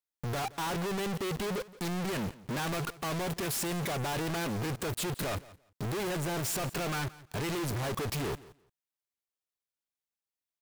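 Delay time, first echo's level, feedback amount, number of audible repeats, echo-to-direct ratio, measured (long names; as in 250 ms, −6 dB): 172 ms, −19.5 dB, 17%, 2, −19.5 dB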